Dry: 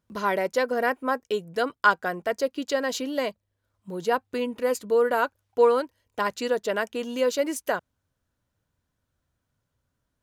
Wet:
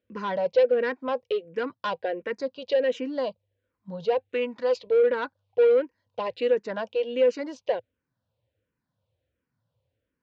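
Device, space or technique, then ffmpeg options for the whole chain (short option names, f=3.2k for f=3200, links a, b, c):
barber-pole phaser into a guitar amplifier: -filter_complex "[0:a]asplit=2[a][b];[b]afreqshift=-1.4[c];[a][c]amix=inputs=2:normalize=1,asoftclip=type=tanh:threshold=-22.5dB,highpass=80,equalizer=f=110:t=q:w=4:g=7,equalizer=f=510:t=q:w=4:g=10,equalizer=f=1.3k:t=q:w=4:g=-6,equalizer=f=2.6k:t=q:w=4:g=3,lowpass=f=4.4k:w=0.5412,lowpass=f=4.4k:w=1.3066,asettb=1/sr,asplit=3[d][e][f];[d]atrim=end=4.294[g];[e]atrim=start=4.29:end=4.87,asetpts=PTS-STARTPTS,afade=t=in:d=0.004:c=qsin,afade=t=out:st=0.576:d=0.004:c=qsin,tiltshelf=f=660:g=-6[h];[f]atrim=start=4.866[i];[g][h]acrossfade=d=0.004:c1=hsin:c2=qsin[j];[j][i]acrossfade=d=0.004:c1=qsin:c2=hsin"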